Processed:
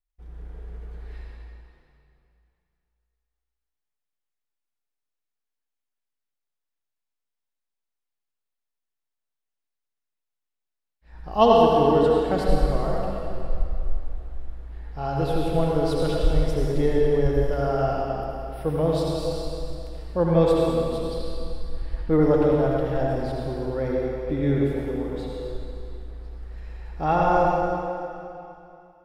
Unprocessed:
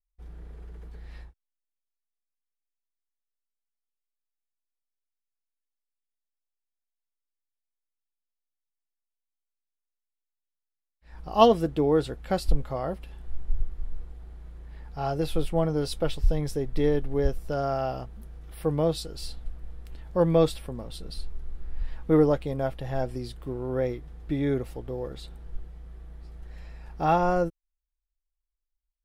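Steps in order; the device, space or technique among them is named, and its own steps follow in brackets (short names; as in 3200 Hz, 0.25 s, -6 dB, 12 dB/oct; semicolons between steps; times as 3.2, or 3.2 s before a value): swimming-pool hall (reverb RT60 2.7 s, pre-delay 66 ms, DRR -3.5 dB; high shelf 4200 Hz -7 dB)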